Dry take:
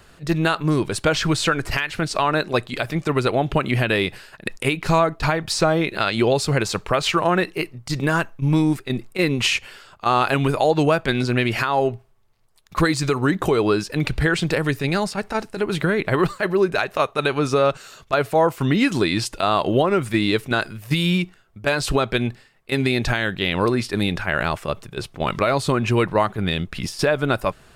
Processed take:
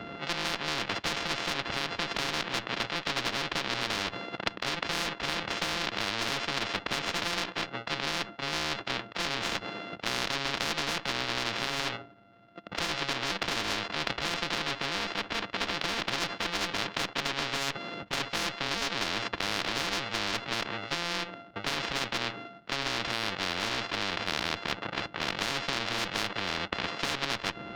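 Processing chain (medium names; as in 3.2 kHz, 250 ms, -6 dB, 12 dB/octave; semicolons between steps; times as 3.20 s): sorted samples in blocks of 64 samples; cabinet simulation 170–3300 Hz, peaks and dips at 200 Hz +9 dB, 310 Hz +9 dB, 1.5 kHz +4 dB, 2.2 kHz -4 dB; in parallel at -8 dB: one-sided clip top -20.5 dBFS; on the sum: spectrum-flattening compressor 10:1; trim -7 dB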